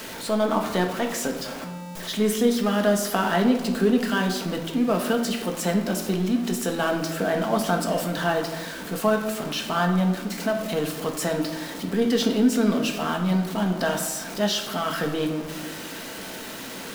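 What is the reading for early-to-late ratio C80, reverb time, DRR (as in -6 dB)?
9.5 dB, 1.2 s, 2.5 dB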